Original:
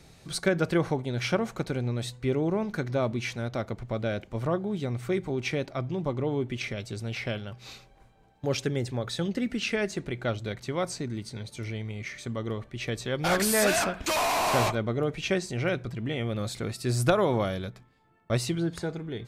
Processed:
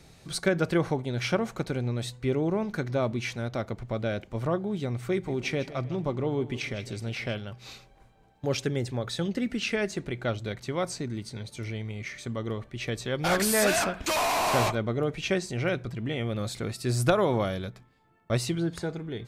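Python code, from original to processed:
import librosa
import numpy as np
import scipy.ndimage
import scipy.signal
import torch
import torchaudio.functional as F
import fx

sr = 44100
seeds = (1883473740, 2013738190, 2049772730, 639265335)

y = fx.echo_feedback(x, sr, ms=155, feedback_pct=44, wet_db=-15, at=(5.27, 7.33), fade=0.02)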